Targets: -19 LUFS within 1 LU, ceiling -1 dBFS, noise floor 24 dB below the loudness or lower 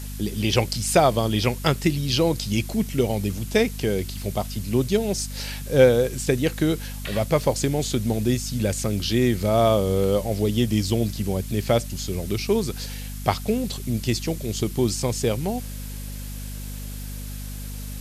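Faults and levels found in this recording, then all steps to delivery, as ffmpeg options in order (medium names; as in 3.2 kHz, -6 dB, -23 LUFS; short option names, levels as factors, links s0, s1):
hum 50 Hz; highest harmonic 250 Hz; hum level -31 dBFS; noise floor -33 dBFS; noise floor target -48 dBFS; loudness -23.5 LUFS; peak level -4.5 dBFS; loudness target -19.0 LUFS
-> -af "bandreject=f=50:t=h:w=6,bandreject=f=100:t=h:w=6,bandreject=f=150:t=h:w=6,bandreject=f=200:t=h:w=6,bandreject=f=250:t=h:w=6"
-af "afftdn=nr=15:nf=-33"
-af "volume=1.68,alimiter=limit=0.891:level=0:latency=1"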